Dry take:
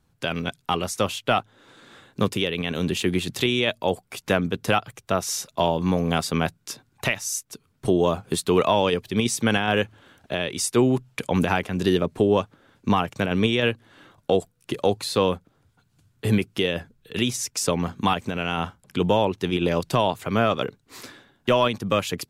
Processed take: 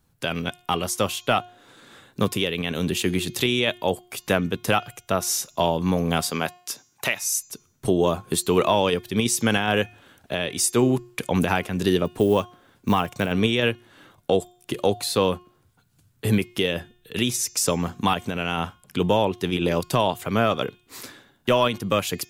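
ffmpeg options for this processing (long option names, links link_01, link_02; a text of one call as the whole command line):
ffmpeg -i in.wav -filter_complex "[0:a]asettb=1/sr,asplit=3[link_01][link_02][link_03];[link_01]atrim=end=6.304[link_04];[link_02]atrim=start=6.3:end=7.22,asetpts=PTS-STARTPTS,afade=type=in:duration=0.004:curve=qsin,afade=type=out:start_time=0.916:duration=0.004:curve=qsin,highpass=frequency=330:poles=1[link_05];[link_03]atrim=start=7.216[link_06];[link_04][link_05]acrossfade=duration=0.004:curve1=hsin:curve2=qsin[link_07];[link_07][link_06]acrossfade=duration=0.004:curve1=qsin:curve2=hsin,asettb=1/sr,asplit=3[link_08][link_09][link_10];[link_08]atrim=end=12.054[link_11];[link_09]atrim=start=12.05:end=13.32,asetpts=PTS-STARTPTS,afade=type=in:duration=0.004:curve=qsin,afade=type=out:start_time=1.266:duration=0.004:curve=qsin,acrusher=bits=9:mode=log:mix=0:aa=0.000001[link_12];[link_10]atrim=start=13.316[link_13];[link_11][link_12]acrossfade=duration=0.004:curve1=hsin:curve2=qsin[link_14];[link_14][link_13]acrossfade=duration=0.004:curve1=qsin:curve2=hsin,highshelf=frequency=9900:gain=11,bandreject=frequency=358:width_type=h:width=4,bandreject=frequency=716:width_type=h:width=4,bandreject=frequency=1074:width_type=h:width=4,bandreject=frequency=1432:width_type=h:width=4,bandreject=frequency=1790:width_type=h:width=4,bandreject=frequency=2148:width_type=h:width=4,bandreject=frequency=2506:width_type=h:width=4,bandreject=frequency=2864:width_type=h:width=4,bandreject=frequency=3222:width_type=h:width=4,bandreject=frequency=3580:width_type=h:width=4,bandreject=frequency=3938:width_type=h:width=4,bandreject=frequency=4296:width_type=h:width=4,bandreject=frequency=4654:width_type=h:width=4,bandreject=frequency=5012:width_type=h:width=4,bandreject=frequency=5370:width_type=h:width=4,bandreject=frequency=5728:width_type=h:width=4,bandreject=frequency=6086:width_type=h:width=4,bandreject=frequency=6444:width_type=h:width=4,bandreject=frequency=6802:width_type=h:width=4,bandreject=frequency=7160:width_type=h:width=4,bandreject=frequency=7518:width_type=h:width=4" out.wav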